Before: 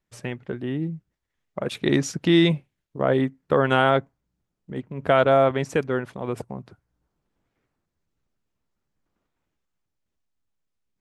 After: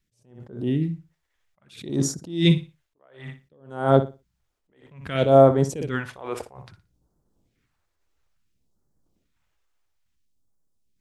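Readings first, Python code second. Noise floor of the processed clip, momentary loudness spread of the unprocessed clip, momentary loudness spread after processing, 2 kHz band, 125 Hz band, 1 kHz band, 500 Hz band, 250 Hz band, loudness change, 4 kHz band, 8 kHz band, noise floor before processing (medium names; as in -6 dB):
-76 dBFS, 18 LU, 20 LU, -8.0 dB, +2.5 dB, -2.0 dB, 0.0 dB, -1.5 dB, +0.5 dB, -3.0 dB, no reading, -81 dBFS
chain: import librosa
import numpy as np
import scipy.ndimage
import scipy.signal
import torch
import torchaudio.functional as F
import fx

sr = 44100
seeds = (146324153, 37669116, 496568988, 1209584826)

y = fx.phaser_stages(x, sr, stages=2, low_hz=150.0, high_hz=2500.0, hz=0.59, feedback_pct=25)
y = fx.room_flutter(y, sr, wall_m=10.1, rt60_s=0.28)
y = fx.attack_slew(y, sr, db_per_s=120.0)
y = y * librosa.db_to_amplitude(5.5)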